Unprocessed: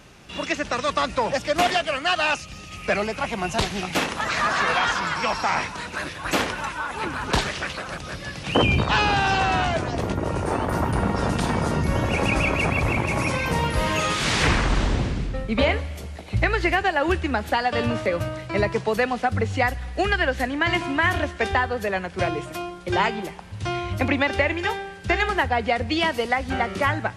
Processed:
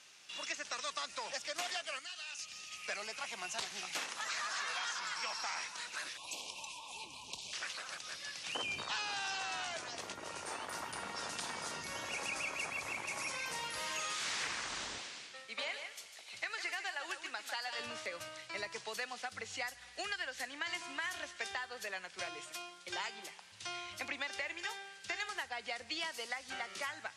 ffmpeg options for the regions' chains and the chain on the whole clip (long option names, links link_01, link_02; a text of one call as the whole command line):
ffmpeg -i in.wav -filter_complex "[0:a]asettb=1/sr,asplit=3[link_01][link_02][link_03];[link_01]atrim=end=1.994[link_04];[link_02]atrim=start=1.99:end=2.39,asetpts=PTS-STARTPTS,afade=type=in:duration=0.004:curve=qsin,afade=type=out:start_time=0.396:duration=0.004:curve=qsin,equalizer=frequency=710:width_type=o:width=2.7:gain=-12.5,acompressor=threshold=-35dB:ratio=3:attack=3.2:release=140:knee=1:detection=peak,asplit=2[link_05][link_06];[link_06]adelay=38,volume=-11dB[link_07];[link_05][link_07]amix=inputs=2:normalize=0,atrim=end_sample=17640[link_08];[link_03]atrim=start=2.386[link_09];[link_04][link_08]acrossfade=duration=0.004:curve1=hsin:curve2=qsin[link_10];[link_10][link_09]acrossfade=duration=0.004:curve1=qsin:curve2=hsin,asettb=1/sr,asplit=3[link_11][link_12][link_13];[link_11]atrim=end=6.174[link_14];[link_12]atrim=start=6.17:end=7.53,asetpts=PTS-STARTPTS,afade=type=in:duration=0.004:curve=qsin,afade=type=out:start_time=1.356:duration=0.004:curve=qsin,asubboost=boost=7.5:cutoff=210,acompressor=threshold=-26dB:ratio=6:attack=3.2:release=140:knee=1:detection=peak,asuperstop=centerf=1600:order=12:qfactor=1.2[link_15];[link_13]atrim=start=7.526[link_16];[link_14][link_15]acrossfade=duration=0.004:curve1=hsin:curve2=qsin[link_17];[link_17][link_16]acrossfade=duration=0.004:curve1=qsin:curve2=hsin,asettb=1/sr,asplit=3[link_18][link_19][link_20];[link_18]atrim=end=14.984[link_21];[link_19]atrim=start=14.98:end=17.79,asetpts=PTS-STARTPTS,afade=type=in:duration=0.004:curve=qsin,afade=type=out:start_time=2.806:duration=0.004:curve=qsin,highpass=frequency=580:poles=1,aecho=1:1:149:0.335,atrim=end_sample=123921[link_22];[link_20]atrim=start=17.786[link_23];[link_21][link_22]acrossfade=duration=0.004:curve1=hsin:curve2=qsin[link_24];[link_24][link_23]acrossfade=duration=0.004:curve1=qsin:curve2=hsin,lowpass=6600,aderivative,acrossover=split=2000|4800[link_25][link_26][link_27];[link_25]acompressor=threshold=-41dB:ratio=4[link_28];[link_26]acompressor=threshold=-50dB:ratio=4[link_29];[link_27]acompressor=threshold=-45dB:ratio=4[link_30];[link_28][link_29][link_30]amix=inputs=3:normalize=0,volume=1.5dB" out.wav